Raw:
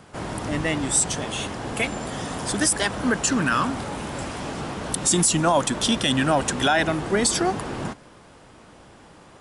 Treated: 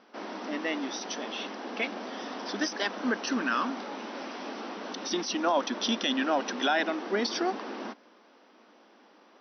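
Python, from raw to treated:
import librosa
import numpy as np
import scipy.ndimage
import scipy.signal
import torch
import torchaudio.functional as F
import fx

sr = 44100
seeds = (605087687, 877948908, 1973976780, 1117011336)

p1 = fx.quant_dither(x, sr, seeds[0], bits=6, dither='none')
p2 = x + (p1 * librosa.db_to_amplitude(-10.0))
p3 = fx.brickwall_bandpass(p2, sr, low_hz=200.0, high_hz=6100.0)
y = p3 * librosa.db_to_amplitude(-8.5)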